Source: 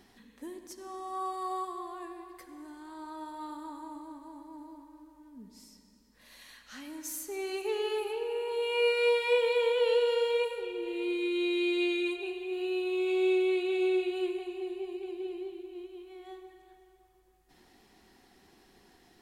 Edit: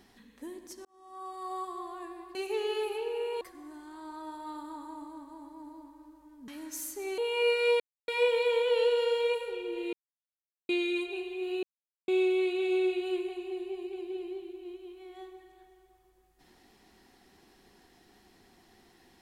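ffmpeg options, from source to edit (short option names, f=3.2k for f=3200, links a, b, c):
-filter_complex "[0:a]asplit=11[a][b][c][d][e][f][g][h][i][j][k];[a]atrim=end=0.85,asetpts=PTS-STARTPTS,afade=t=out:st=0.846:d=0.004:c=hsin[l];[b]atrim=start=0.85:end=2.352,asetpts=PTS-STARTPTS,afade=t=in:d=0.92[m];[c]atrim=start=7.498:end=8.562[n];[d]atrim=start=2.348:end=5.422[o];[e]atrim=start=6.798:end=7.502[p];[f]atrim=start=8.558:end=9.18,asetpts=PTS-STARTPTS,afade=t=out:st=0.618:d=0.004:c=hsin,apad=pad_dur=0.28[q];[g]atrim=start=9.18:end=11.03,asetpts=PTS-STARTPTS,afade=t=in:d=0.004:c=hsin,afade=t=out:st=1.846:d=0.004:c=hsin[r];[h]atrim=start=11.03:end=11.79,asetpts=PTS-STARTPTS,volume=0[s];[i]atrim=start=11.79:end=12.73,asetpts=PTS-STARTPTS,afade=t=in:d=0.004:c=hsin,afade=t=out:st=0.936:d=0.004:c=hsin[t];[j]atrim=start=12.73:end=13.18,asetpts=PTS-STARTPTS,volume=0[u];[k]atrim=start=13.18,asetpts=PTS-STARTPTS,afade=t=in:d=0.004:c=hsin[v];[l][m]concat=n=2:v=0:a=1[w];[w][n]acrossfade=d=0.004:c1=hsin:c2=hsin[x];[x][o]acrossfade=d=0.004:c1=hsin:c2=hsin[y];[y][p]acrossfade=d=0.004:c1=hsin:c2=hsin[z];[q][r][s][t][u][v]concat=n=6:v=0:a=1[aa];[z][aa]acrossfade=d=0.004:c1=hsin:c2=hsin"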